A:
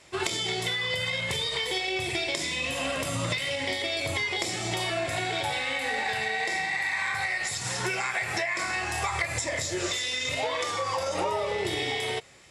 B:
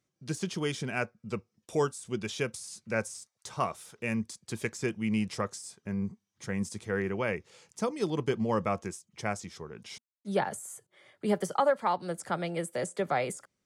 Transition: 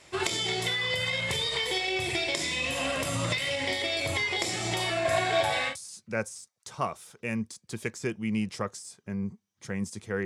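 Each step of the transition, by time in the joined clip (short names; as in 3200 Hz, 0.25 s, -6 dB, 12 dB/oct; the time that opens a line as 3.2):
A
5.05–5.76 small resonant body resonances 650/1100/1600 Hz, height 12 dB, ringing for 45 ms
5.71 switch to B from 2.5 s, crossfade 0.10 s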